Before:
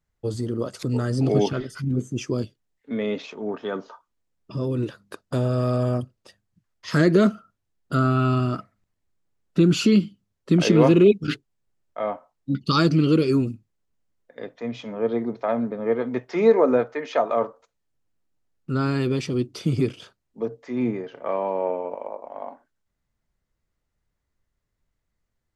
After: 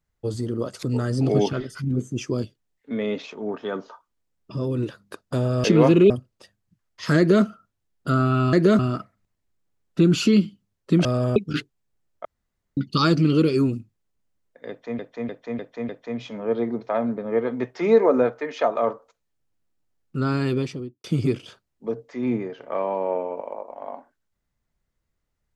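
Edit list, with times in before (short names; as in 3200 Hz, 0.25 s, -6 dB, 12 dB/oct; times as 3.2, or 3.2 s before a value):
5.64–5.95 swap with 10.64–11.1
7.03–7.29 copy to 8.38
11.99–12.51 room tone
14.43–14.73 loop, 5 plays
19.06–19.58 studio fade out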